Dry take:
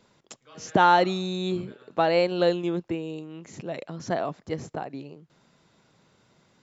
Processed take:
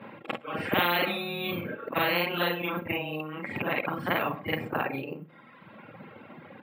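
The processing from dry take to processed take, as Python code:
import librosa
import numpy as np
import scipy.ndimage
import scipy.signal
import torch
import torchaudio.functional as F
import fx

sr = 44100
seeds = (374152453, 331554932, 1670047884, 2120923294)

p1 = fx.frame_reverse(x, sr, frame_ms=103.0)
p2 = (np.kron(p1[::3], np.eye(3)[0]) * 3)[:len(p1)]
p3 = fx.dereverb_blind(p2, sr, rt60_s=1.3)
p4 = scipy.signal.sosfilt(scipy.signal.ellip(3, 1.0, 40, [110.0, 2500.0], 'bandpass', fs=sr, output='sos'), p3)
p5 = p4 + 0.41 * np.pad(p4, (int(3.7 * sr / 1000.0), 0))[:len(p4)]
p6 = p5 + fx.echo_feedback(p5, sr, ms=64, feedback_pct=35, wet_db=-22, dry=0)
y = fx.spectral_comp(p6, sr, ratio=4.0)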